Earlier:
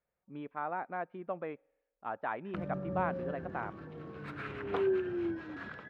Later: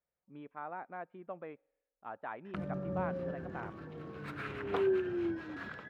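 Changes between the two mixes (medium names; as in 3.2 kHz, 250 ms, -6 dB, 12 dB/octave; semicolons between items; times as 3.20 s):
speech -6.0 dB; background: add treble shelf 7.4 kHz +10.5 dB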